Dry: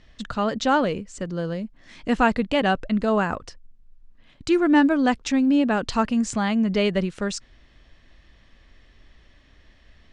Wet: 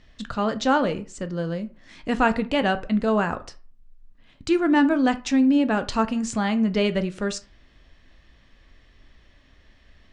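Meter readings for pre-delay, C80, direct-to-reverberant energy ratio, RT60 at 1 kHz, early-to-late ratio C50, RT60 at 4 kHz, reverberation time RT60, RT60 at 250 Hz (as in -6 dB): 11 ms, 22.5 dB, 10.0 dB, 0.45 s, 18.0 dB, 0.25 s, 0.40 s, 0.35 s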